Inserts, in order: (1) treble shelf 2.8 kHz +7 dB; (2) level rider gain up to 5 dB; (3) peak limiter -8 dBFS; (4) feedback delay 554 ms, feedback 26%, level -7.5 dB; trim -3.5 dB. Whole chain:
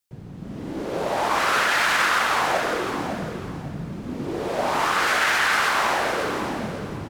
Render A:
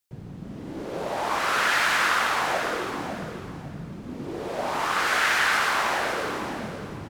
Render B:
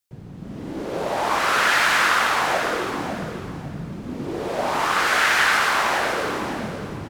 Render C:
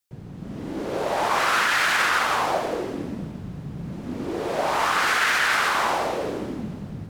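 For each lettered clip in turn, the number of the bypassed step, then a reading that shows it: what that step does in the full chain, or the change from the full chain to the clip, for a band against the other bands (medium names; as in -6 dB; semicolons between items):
2, crest factor change +1.5 dB; 3, momentary loudness spread change +2 LU; 4, momentary loudness spread change +1 LU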